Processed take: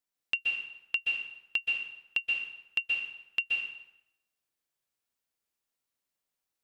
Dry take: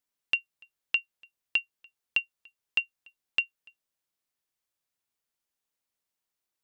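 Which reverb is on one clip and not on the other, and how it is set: plate-style reverb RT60 0.85 s, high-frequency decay 0.8×, pre-delay 115 ms, DRR -0.5 dB; trim -3.5 dB

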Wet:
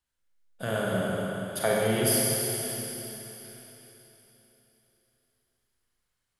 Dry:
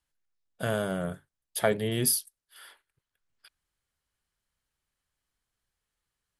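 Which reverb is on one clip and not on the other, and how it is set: Schroeder reverb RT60 3.6 s, combs from 32 ms, DRR -5 dB; trim -3 dB

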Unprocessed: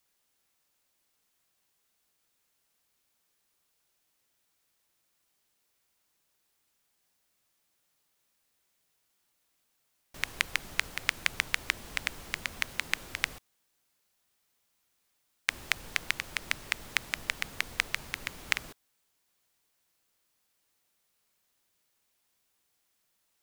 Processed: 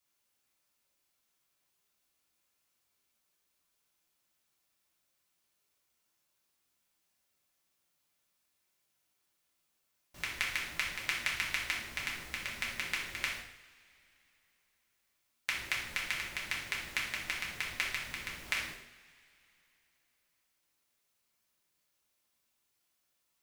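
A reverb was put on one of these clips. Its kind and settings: two-slope reverb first 0.64 s, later 3.2 s, from -22 dB, DRR -5 dB; trim -9 dB

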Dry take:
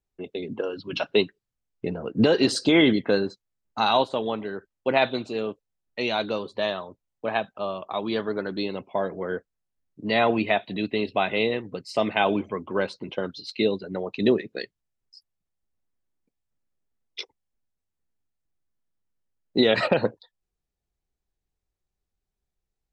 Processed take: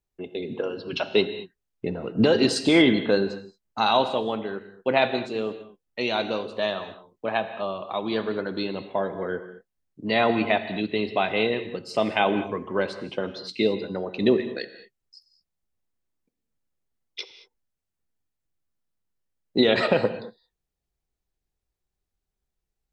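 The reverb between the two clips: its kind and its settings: gated-style reverb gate 250 ms flat, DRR 10 dB

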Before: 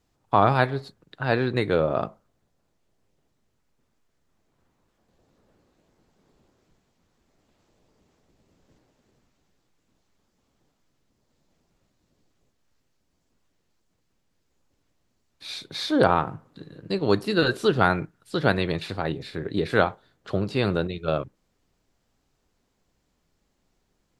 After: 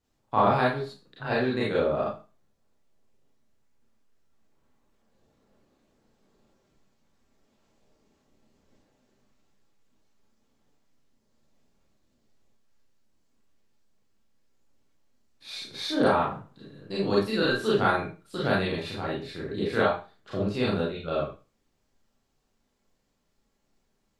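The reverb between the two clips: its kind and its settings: Schroeder reverb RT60 0.32 s, combs from 28 ms, DRR -6.5 dB; trim -9.5 dB

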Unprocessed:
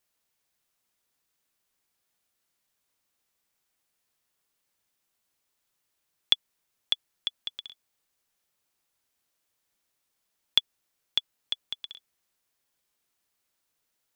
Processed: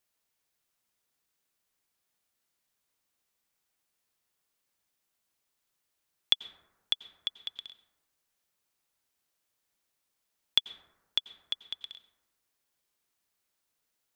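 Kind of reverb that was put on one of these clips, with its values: plate-style reverb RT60 1.2 s, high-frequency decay 0.3×, pre-delay 80 ms, DRR 13 dB; trim -2.5 dB

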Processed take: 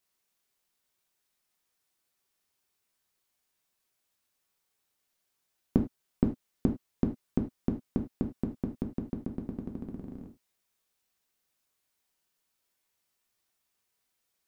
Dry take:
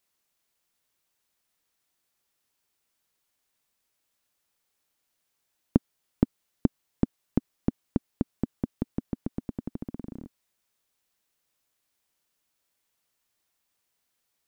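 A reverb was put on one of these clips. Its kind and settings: gated-style reverb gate 120 ms falling, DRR 2 dB; trim -4 dB

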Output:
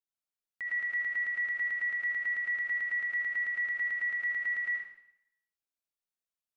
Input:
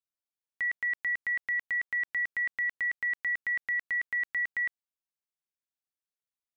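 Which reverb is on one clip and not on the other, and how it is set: algorithmic reverb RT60 0.74 s, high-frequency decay 1×, pre-delay 40 ms, DRR -2.5 dB; trim -7 dB

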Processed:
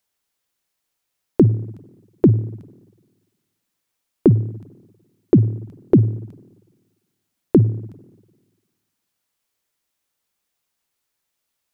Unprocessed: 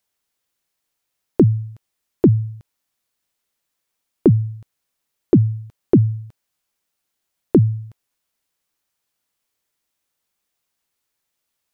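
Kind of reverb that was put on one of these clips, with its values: spring tank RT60 1.4 s, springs 49/57 ms, chirp 80 ms, DRR 17.5 dB

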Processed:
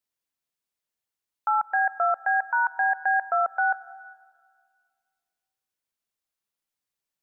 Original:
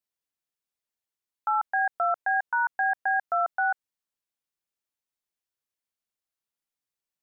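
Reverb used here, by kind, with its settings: plate-style reverb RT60 1.8 s, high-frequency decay 1×, pre-delay 80 ms, DRR 17.5 dB; trim +2 dB

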